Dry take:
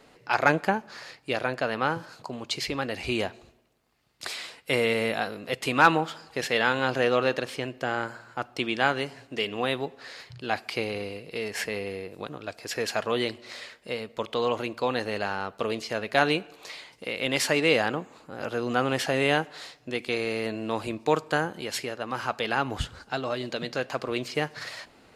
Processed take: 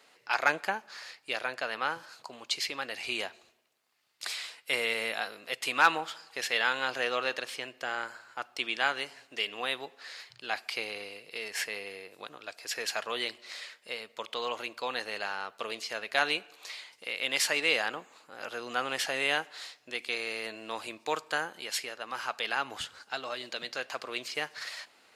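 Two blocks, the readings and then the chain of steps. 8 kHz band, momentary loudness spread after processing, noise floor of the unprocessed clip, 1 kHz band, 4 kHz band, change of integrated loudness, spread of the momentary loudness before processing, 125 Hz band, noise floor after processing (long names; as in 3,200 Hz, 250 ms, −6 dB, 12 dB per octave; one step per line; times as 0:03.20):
0.0 dB, 14 LU, −57 dBFS, −5.5 dB, −1.0 dB, −4.5 dB, 14 LU, −20.5 dB, −64 dBFS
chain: high-pass filter 1,500 Hz 6 dB per octave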